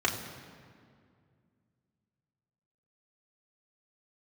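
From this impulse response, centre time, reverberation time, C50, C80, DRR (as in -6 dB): 37 ms, 2.2 s, 7.5 dB, 8.5 dB, -2.0 dB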